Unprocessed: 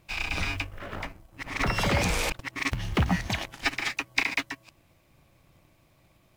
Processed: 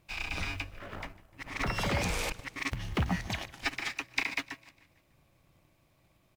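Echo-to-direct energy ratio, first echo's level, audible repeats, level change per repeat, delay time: -20.0 dB, -21.5 dB, 3, -5.5 dB, 150 ms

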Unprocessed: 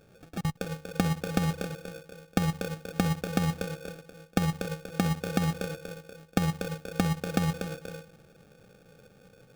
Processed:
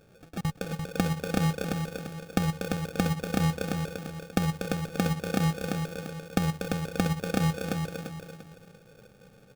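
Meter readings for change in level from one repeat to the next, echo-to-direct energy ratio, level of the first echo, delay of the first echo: -9.5 dB, -4.5 dB, -5.0 dB, 344 ms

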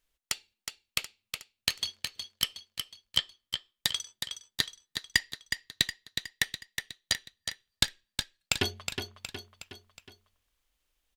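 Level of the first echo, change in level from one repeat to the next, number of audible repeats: -7.0 dB, -6.0 dB, 4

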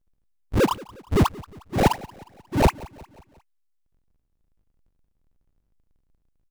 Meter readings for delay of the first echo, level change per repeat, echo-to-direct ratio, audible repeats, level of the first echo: 179 ms, -6.0 dB, -19.5 dB, 3, -21.0 dB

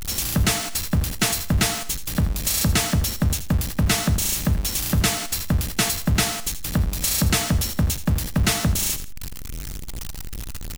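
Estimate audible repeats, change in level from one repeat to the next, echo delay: 2, -10.0 dB, 81 ms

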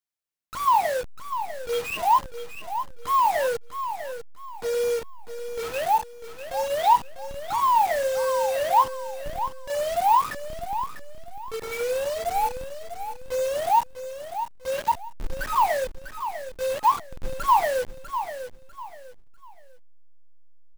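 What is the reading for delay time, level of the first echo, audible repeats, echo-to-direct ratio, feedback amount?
647 ms, -10.0 dB, 3, -9.5 dB, 30%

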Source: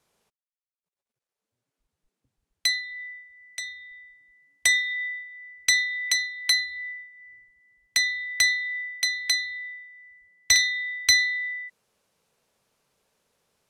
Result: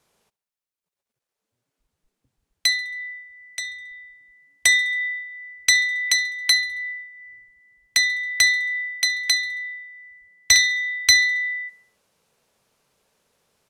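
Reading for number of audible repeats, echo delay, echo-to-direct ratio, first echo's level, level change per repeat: 3, 68 ms, -22.0 dB, -23.5 dB, -5.0 dB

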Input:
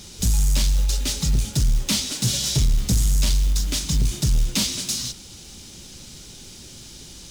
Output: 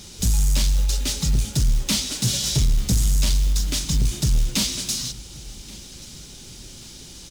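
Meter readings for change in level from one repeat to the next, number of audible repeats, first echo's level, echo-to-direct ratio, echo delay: -6.5 dB, 2, -22.0 dB, -21.0 dB, 1130 ms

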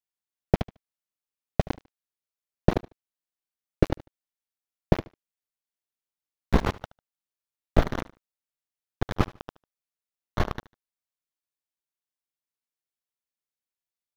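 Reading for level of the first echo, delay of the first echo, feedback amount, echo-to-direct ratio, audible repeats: -19.5 dB, 74 ms, 23%, -19.5 dB, 2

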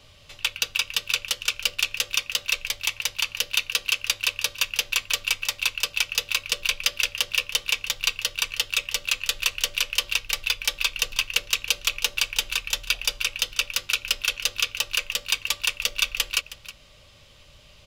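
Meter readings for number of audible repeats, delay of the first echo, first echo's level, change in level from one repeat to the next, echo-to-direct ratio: 1, 317 ms, -16.0 dB, no regular repeats, -16.0 dB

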